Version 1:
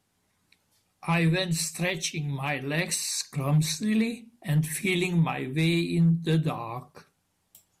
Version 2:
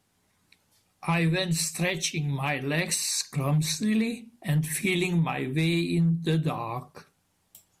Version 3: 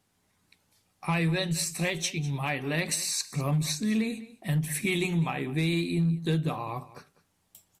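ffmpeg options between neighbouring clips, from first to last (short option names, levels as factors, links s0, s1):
-af "acompressor=threshold=0.0562:ratio=2.5,volume=1.33"
-af "aecho=1:1:200:0.126,volume=0.794"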